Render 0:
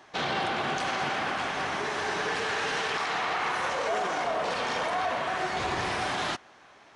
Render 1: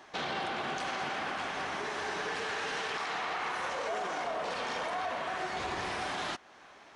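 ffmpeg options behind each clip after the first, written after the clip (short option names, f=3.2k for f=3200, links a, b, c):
-af "acompressor=threshold=-42dB:ratio=1.5,equalizer=f=120:w=2.5:g=-5.5"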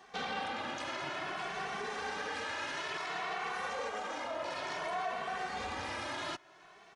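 -filter_complex "[0:a]asplit=2[a][b];[b]adelay=2.2,afreqshift=0.57[c];[a][c]amix=inputs=2:normalize=1"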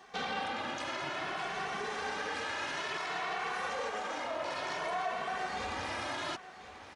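-af "aecho=1:1:1038:0.2,volume=1.5dB"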